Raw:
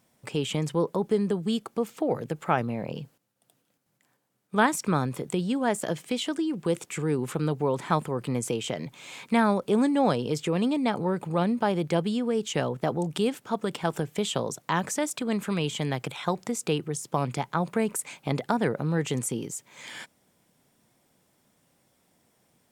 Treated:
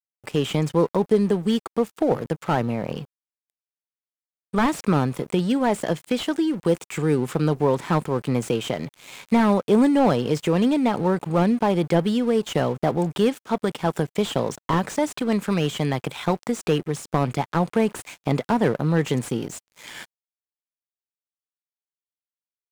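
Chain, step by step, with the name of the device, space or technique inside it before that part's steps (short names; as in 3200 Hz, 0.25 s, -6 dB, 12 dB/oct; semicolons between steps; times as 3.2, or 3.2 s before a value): early transistor amplifier (crossover distortion -46 dBFS; slew limiter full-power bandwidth 63 Hz); gain +6.5 dB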